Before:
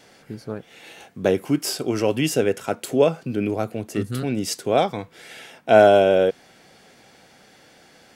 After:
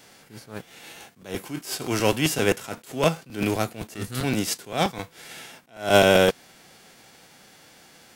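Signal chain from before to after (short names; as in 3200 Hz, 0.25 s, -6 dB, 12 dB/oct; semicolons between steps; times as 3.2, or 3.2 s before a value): spectral whitening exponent 0.6; crackling interface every 0.13 s, samples 256, repeat, from 0.69; attack slew limiter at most 160 dB/s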